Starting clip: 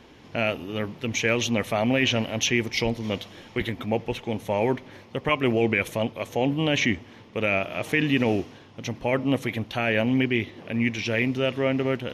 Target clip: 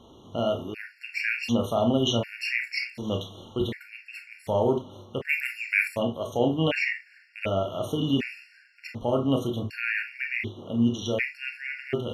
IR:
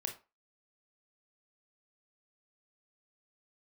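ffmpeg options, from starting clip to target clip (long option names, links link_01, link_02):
-filter_complex "[0:a]asplit=3[link_01][link_02][link_03];[link_01]afade=type=out:start_time=5.28:duration=0.02[link_04];[link_02]aemphasis=mode=production:type=riaa,afade=type=in:start_time=5.28:duration=0.02,afade=type=out:start_time=5.84:duration=0.02[link_05];[link_03]afade=type=in:start_time=5.84:duration=0.02[link_06];[link_04][link_05][link_06]amix=inputs=3:normalize=0[link_07];[1:a]atrim=start_sample=2205,atrim=end_sample=4410[link_08];[link_07][link_08]afir=irnorm=-1:irlink=0,afftfilt=real='re*gt(sin(2*PI*0.67*pts/sr)*(1-2*mod(floor(b*sr/1024/1400),2)),0)':imag='im*gt(sin(2*PI*0.67*pts/sr)*(1-2*mod(floor(b*sr/1024/1400),2)),0)':win_size=1024:overlap=0.75"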